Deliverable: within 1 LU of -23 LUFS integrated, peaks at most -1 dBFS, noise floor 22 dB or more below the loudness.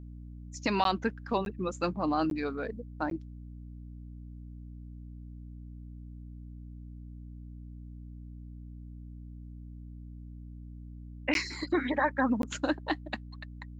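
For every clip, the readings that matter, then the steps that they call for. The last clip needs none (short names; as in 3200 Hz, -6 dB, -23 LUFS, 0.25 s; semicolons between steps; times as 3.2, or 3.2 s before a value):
dropouts 6; longest dropout 12 ms; hum 60 Hz; harmonics up to 300 Hz; hum level -42 dBFS; loudness -31.5 LUFS; peak -15.0 dBFS; loudness target -23.0 LUFS
-> interpolate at 0.84/1.45/2.3/3.1/11.34/12.42, 12 ms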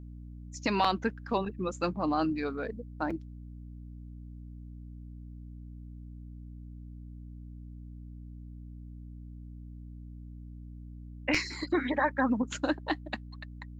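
dropouts 0; hum 60 Hz; harmonics up to 300 Hz; hum level -42 dBFS
-> notches 60/120/180/240/300 Hz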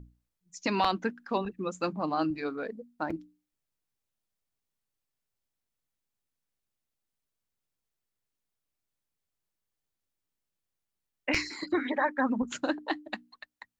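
hum none; loudness -32.0 LUFS; peak -13.0 dBFS; loudness target -23.0 LUFS
-> gain +9 dB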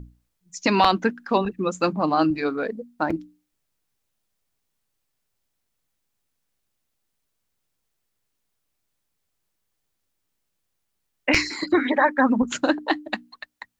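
loudness -23.0 LUFS; peak -4.0 dBFS; noise floor -77 dBFS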